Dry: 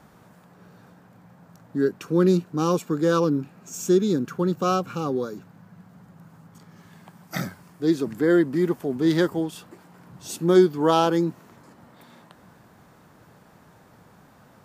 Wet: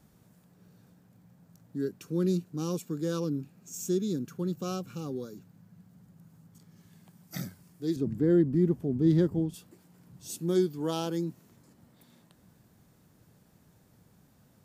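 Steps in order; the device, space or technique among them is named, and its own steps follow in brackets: 7.96–9.54 tilt -3.5 dB/oct; smiley-face EQ (low shelf 180 Hz +5.5 dB; bell 1100 Hz -9 dB 2.1 oct; high shelf 5300 Hz +7 dB); gain -9 dB

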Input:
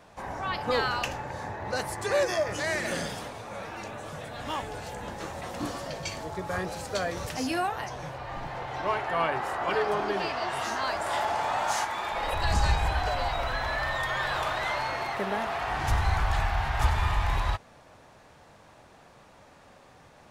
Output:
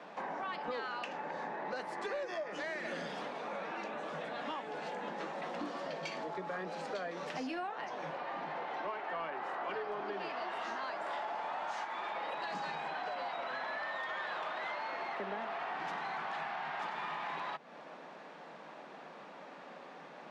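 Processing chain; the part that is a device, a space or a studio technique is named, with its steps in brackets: steep high-pass 150 Hz 96 dB/oct; AM radio (BPF 200–3400 Hz; compressor 5:1, threshold -42 dBFS, peak gain reduction 18.5 dB; soft clip -32 dBFS, distortion -26 dB); gain +4.5 dB

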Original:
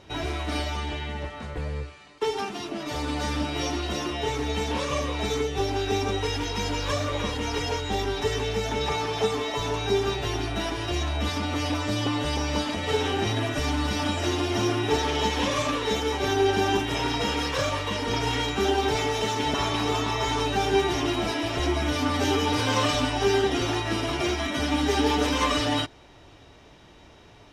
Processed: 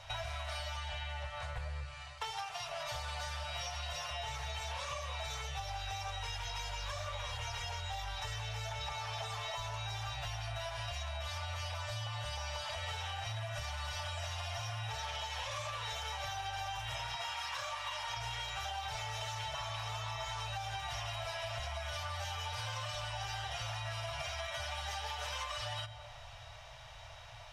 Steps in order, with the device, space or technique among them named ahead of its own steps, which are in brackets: elliptic band-stop 120–620 Hz, stop band 50 dB; 17.15–18.17 resonant low shelf 560 Hz -11 dB, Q 1.5; shoebox room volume 2900 m³, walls furnished, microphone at 0.68 m; serial compression, leveller first (compressor, threshold -27 dBFS, peak gain reduction 6.5 dB; compressor 6:1, threshold -40 dBFS, peak gain reduction 13 dB); gain +2 dB

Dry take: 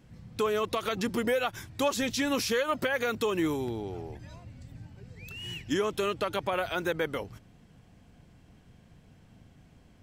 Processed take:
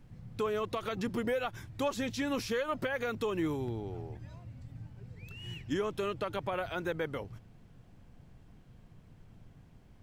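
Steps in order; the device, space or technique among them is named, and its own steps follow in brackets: car interior (bell 120 Hz +6 dB 0.84 oct; high shelf 3400 Hz -7 dB; brown noise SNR 21 dB); gain -4.5 dB

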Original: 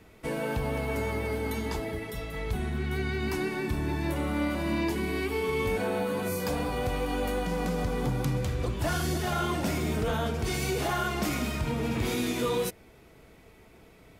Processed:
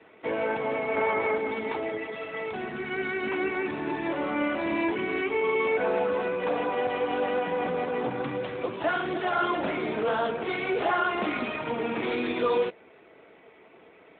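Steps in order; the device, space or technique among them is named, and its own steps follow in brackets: 0.96–1.38 dynamic EQ 1100 Hz, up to +6 dB, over -50 dBFS, Q 0.77; telephone (BPF 360–3400 Hz; gain +6 dB; AMR-NB 12.2 kbps 8000 Hz)

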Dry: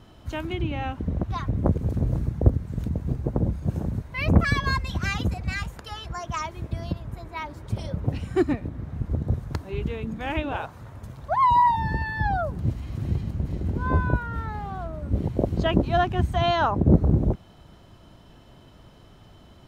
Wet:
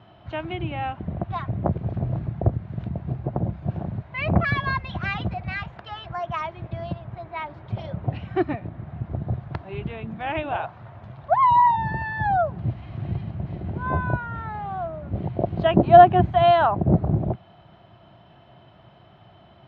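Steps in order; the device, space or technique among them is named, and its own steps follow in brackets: 15.77–16.3 bell 320 Hz +8.5 dB 2.9 oct; guitar cabinet (speaker cabinet 110–3400 Hz, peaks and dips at 120 Hz +3 dB, 260 Hz -9 dB, 470 Hz -7 dB, 700 Hz +8 dB); gain +1 dB

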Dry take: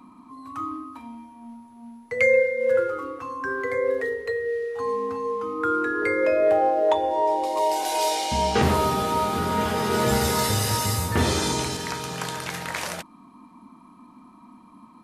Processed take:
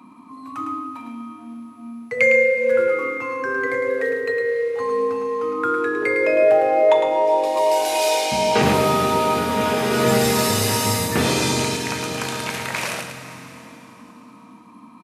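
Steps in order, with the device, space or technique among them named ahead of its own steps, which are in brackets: PA in a hall (HPF 110 Hz 24 dB/oct; bell 2500 Hz +5.5 dB 0.3 oct; echo 0.107 s -6.5 dB; reverb RT60 3.7 s, pre-delay 20 ms, DRR 7.5 dB); gain +2.5 dB

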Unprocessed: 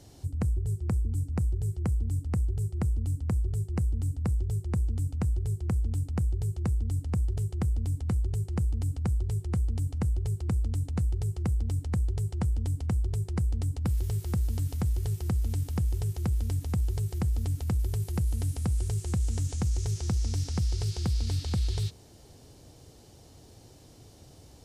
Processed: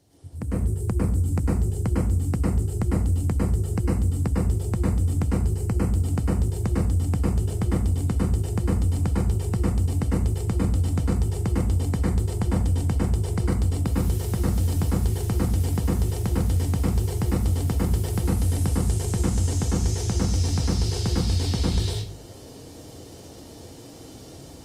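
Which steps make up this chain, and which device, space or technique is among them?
5.45–5.93 notch 3500 Hz, Q 6.1; far-field microphone of a smart speaker (reverb RT60 0.45 s, pre-delay 99 ms, DRR -4.5 dB; HPF 95 Hz 6 dB/oct; AGC gain up to 14 dB; gain -8 dB; Opus 32 kbps 48000 Hz)

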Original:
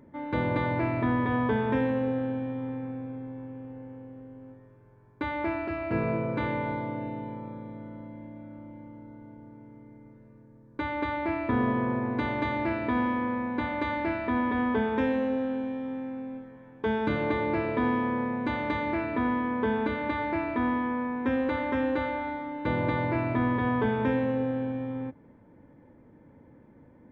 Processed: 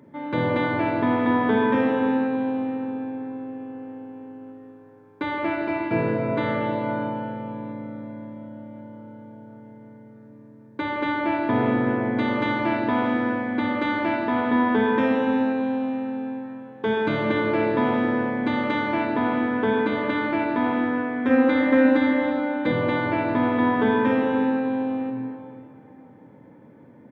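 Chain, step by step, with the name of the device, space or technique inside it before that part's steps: PA in a hall (HPF 110 Hz 24 dB/oct; bell 3400 Hz +3.5 dB 0.4 oct; echo 0.167 s -11 dB; reverb RT60 2.8 s, pre-delay 36 ms, DRR 1.5 dB); 21.29–22.72 comb 3.9 ms; gain +3.5 dB

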